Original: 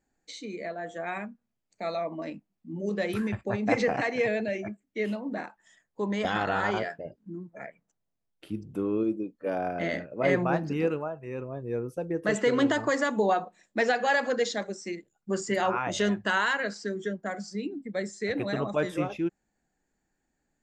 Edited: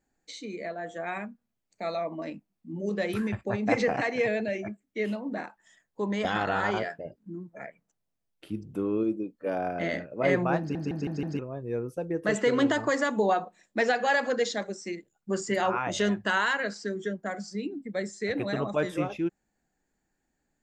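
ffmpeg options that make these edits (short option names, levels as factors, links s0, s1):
-filter_complex "[0:a]asplit=6[s0][s1][s2][s3][s4][s5];[s0]atrim=end=10.752[s6];[s1]atrim=start=10.588:end=10.752[s7];[s2]atrim=start=10.588:end=10.752[s8];[s3]atrim=start=10.588:end=10.752[s9];[s4]atrim=start=10.588:end=10.752[s10];[s5]atrim=start=11.388[s11];[s6][s7]acrossfade=d=0.004:c1=hsin:c2=hsin[s12];[s12][s8]acrossfade=d=0.004:c1=hsin:c2=hsin[s13];[s13][s9]acrossfade=d=0.004:c1=hsin:c2=hsin[s14];[s14][s10]acrossfade=d=0.004:c1=hsin:c2=hsin[s15];[s15][s11]acrossfade=d=0.004:c1=hsin:c2=hsin"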